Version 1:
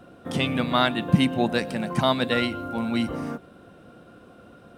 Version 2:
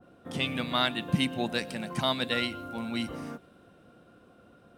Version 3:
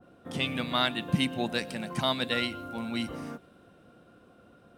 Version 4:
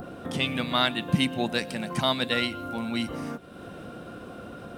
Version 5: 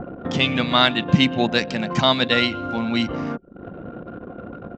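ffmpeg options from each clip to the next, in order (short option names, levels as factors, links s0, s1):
-af "adynamicequalizer=threshold=0.0126:dfrequency=1800:dqfactor=0.7:tfrequency=1800:tqfactor=0.7:attack=5:release=100:ratio=0.375:range=3.5:mode=boostabove:tftype=highshelf,volume=0.398"
-af anull
-af "acompressor=mode=upward:threshold=0.0282:ratio=2.5,volume=1.41"
-af "anlmdn=0.631,aresample=16000,aresample=44100,volume=2.37"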